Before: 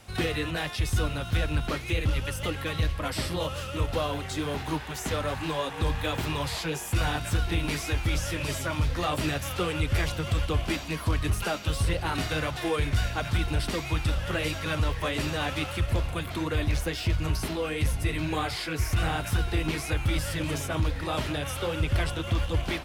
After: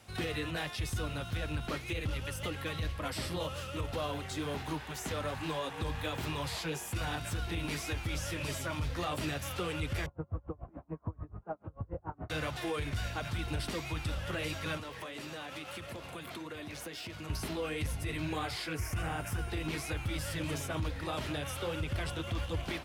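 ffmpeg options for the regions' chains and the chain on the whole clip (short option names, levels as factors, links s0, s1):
-filter_complex "[0:a]asettb=1/sr,asplit=3[s0][s1][s2];[s0]atrim=end=10.064[s3];[s1]atrim=start=10.06:end=12.3,asetpts=PTS-STARTPTS,afade=t=in:d=0.004:c=qsin,afade=t=out:st=2.236:d=0.004:c=qsin,lowpass=f=1100:w=0.5412,lowpass=f=1100:w=1.3066,aeval=exprs='val(0)*pow(10,-31*(0.5-0.5*cos(2*PI*6.9*n/s))/20)':c=same[s4];[s2]atrim=start=12.296[s5];[s3][s4]acrossfade=d=0.004:c1=hsin:c2=qsin[s6];[s6][s5]acrossfade=d=0.004:c1=qsin:c2=hsin,asettb=1/sr,asplit=3[s7][s8][s9];[s7]atrim=end=14.774[s10];[s8]atrim=start=14.77:end=17.3,asetpts=PTS-STARTPTS,afade=t=in:d=0.004:c=qsin,afade=t=out:st=2.526:d=0.004:c=qsin,highpass=180,acompressor=threshold=0.0224:ratio=10:attack=3.2:release=140:knee=1:detection=peak[s11];[s9]atrim=start=17.296[s12];[s10][s11]acrossfade=d=0.004:c1=hsin:c2=qsin[s13];[s13][s12]acrossfade=d=0.004:c1=qsin:c2=hsin,asettb=1/sr,asplit=3[s14][s15][s16];[s14]atrim=end=18.744[s17];[s15]atrim=start=18.74:end=19.5,asetpts=PTS-STARTPTS,afade=t=in:d=0.004:c=qsin,afade=t=out:st=0.756:d=0.004:c=qsin,equalizer=f=3900:w=3.2:g=-11.5,aeval=exprs='val(0)+0.002*sin(2*PI*9100*n/s)':c=same[s18];[s16]atrim=start=19.496[s19];[s17][s18]acrossfade=d=0.004:c1=hsin:c2=qsin[s20];[s20][s19]acrossfade=d=0.004:c1=qsin:c2=hsin,highpass=60,alimiter=limit=0.0944:level=0:latency=1:release=44,volume=0.531"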